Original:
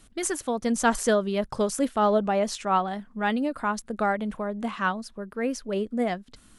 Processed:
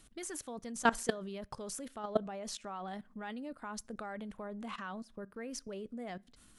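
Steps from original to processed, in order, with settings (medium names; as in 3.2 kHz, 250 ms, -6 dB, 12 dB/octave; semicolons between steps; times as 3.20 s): treble shelf 2.3 kHz +2.5 dB; level held to a coarse grid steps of 19 dB; on a send: reverberation RT60 0.40 s, pre-delay 3 ms, DRR 20 dB; on the sum: trim -4 dB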